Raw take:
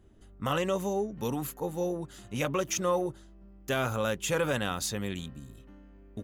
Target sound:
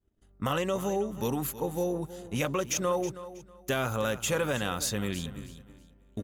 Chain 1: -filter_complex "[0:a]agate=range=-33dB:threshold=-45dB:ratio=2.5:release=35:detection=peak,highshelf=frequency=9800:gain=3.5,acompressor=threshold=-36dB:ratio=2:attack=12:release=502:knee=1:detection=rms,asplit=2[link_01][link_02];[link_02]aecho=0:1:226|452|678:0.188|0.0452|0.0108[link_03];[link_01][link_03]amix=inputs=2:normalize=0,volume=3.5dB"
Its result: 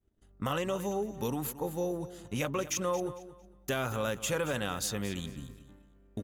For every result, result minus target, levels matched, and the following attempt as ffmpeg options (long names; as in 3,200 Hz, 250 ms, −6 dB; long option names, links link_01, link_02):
echo 95 ms early; downward compressor: peak gain reduction +3 dB
-filter_complex "[0:a]agate=range=-33dB:threshold=-45dB:ratio=2.5:release=35:detection=peak,highshelf=frequency=9800:gain=3.5,acompressor=threshold=-36dB:ratio=2:attack=12:release=502:knee=1:detection=rms,asplit=2[link_01][link_02];[link_02]aecho=0:1:321|642|963:0.188|0.0452|0.0108[link_03];[link_01][link_03]amix=inputs=2:normalize=0,volume=3.5dB"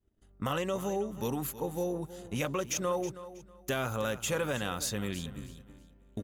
downward compressor: peak gain reduction +3 dB
-filter_complex "[0:a]agate=range=-33dB:threshold=-45dB:ratio=2.5:release=35:detection=peak,highshelf=frequency=9800:gain=3.5,acompressor=threshold=-30dB:ratio=2:attack=12:release=502:knee=1:detection=rms,asplit=2[link_01][link_02];[link_02]aecho=0:1:321|642|963:0.188|0.0452|0.0108[link_03];[link_01][link_03]amix=inputs=2:normalize=0,volume=3.5dB"